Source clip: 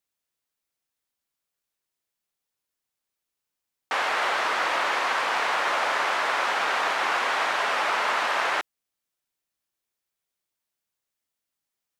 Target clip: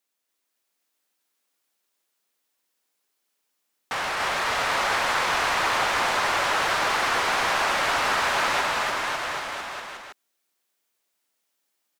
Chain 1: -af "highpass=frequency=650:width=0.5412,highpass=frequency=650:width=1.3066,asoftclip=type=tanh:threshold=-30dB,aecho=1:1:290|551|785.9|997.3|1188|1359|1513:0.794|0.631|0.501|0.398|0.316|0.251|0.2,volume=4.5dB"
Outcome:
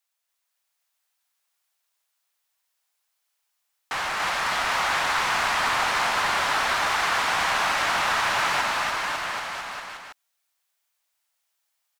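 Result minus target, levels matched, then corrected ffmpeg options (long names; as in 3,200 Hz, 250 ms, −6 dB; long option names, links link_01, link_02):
500 Hz band −3.5 dB
-af "highpass=frequency=210:width=0.5412,highpass=frequency=210:width=1.3066,asoftclip=type=tanh:threshold=-30dB,aecho=1:1:290|551|785.9|997.3|1188|1359|1513:0.794|0.631|0.501|0.398|0.316|0.251|0.2,volume=4.5dB"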